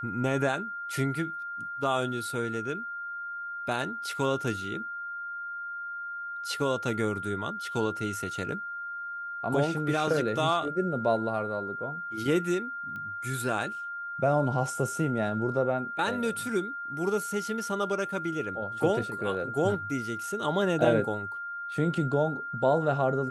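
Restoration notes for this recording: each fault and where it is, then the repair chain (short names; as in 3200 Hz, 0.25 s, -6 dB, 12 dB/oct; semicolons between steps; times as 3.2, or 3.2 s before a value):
tone 1400 Hz -34 dBFS
12.96 pop -29 dBFS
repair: de-click; notch 1400 Hz, Q 30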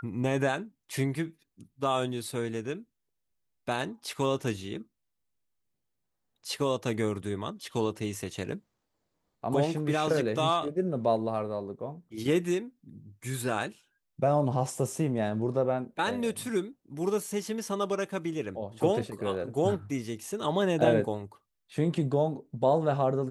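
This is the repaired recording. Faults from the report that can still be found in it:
12.96 pop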